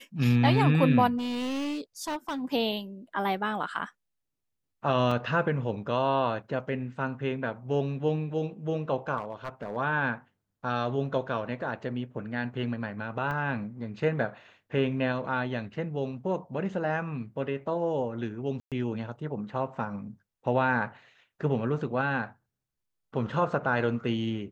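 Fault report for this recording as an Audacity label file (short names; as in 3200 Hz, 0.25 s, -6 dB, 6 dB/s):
1.170000	2.420000	clipped -29 dBFS
5.110000	5.110000	gap 4 ms
9.170000	9.770000	clipped -28.5 dBFS
13.310000	13.310000	gap 3.1 ms
18.600000	18.720000	gap 0.117 s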